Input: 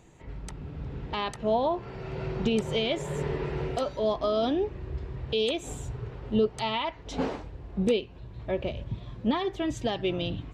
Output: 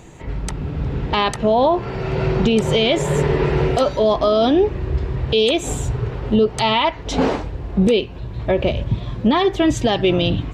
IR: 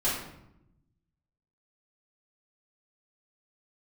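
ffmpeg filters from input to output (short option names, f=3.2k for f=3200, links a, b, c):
-af "alimiter=level_in=20.5dB:limit=-1dB:release=50:level=0:latency=1,volume=-6.5dB"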